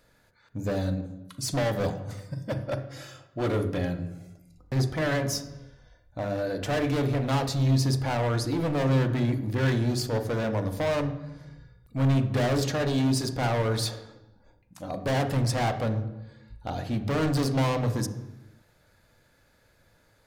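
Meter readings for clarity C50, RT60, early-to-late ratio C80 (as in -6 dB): 11.0 dB, 0.95 s, 13.5 dB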